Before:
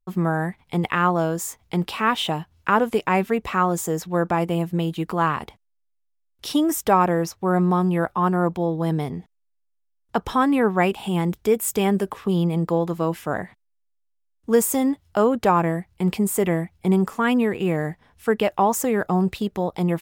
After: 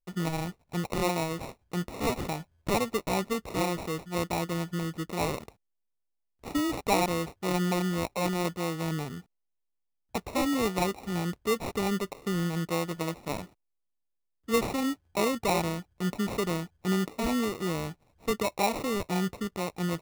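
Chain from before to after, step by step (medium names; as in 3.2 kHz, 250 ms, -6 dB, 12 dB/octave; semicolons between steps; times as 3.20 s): sample-rate reducer 1.6 kHz, jitter 0%; trim -8.5 dB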